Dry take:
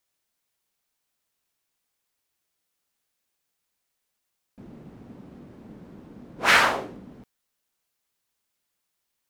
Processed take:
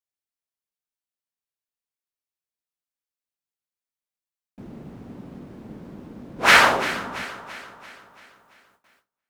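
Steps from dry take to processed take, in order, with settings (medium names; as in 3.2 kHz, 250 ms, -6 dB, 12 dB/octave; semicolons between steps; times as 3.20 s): echo whose repeats swap between lows and highs 169 ms, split 1.2 kHz, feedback 71%, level -11 dB; gate with hold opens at -55 dBFS; trim +4.5 dB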